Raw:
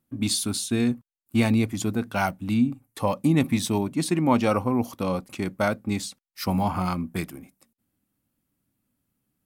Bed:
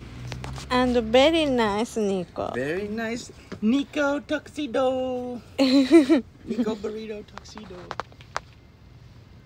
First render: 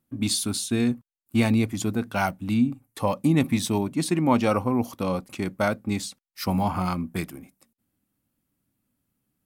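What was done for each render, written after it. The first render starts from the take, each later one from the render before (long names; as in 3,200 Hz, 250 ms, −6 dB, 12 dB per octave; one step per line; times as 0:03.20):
no processing that can be heard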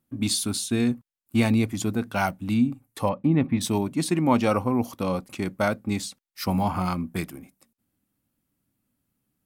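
0:03.09–0:03.61: high-frequency loss of the air 440 metres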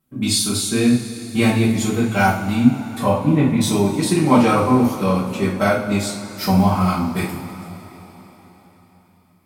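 coupled-rooms reverb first 0.4 s, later 4.3 s, from −18 dB, DRR −7 dB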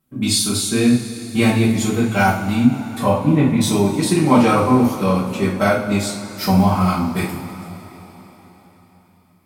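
level +1 dB
brickwall limiter −3 dBFS, peak gain reduction 2.5 dB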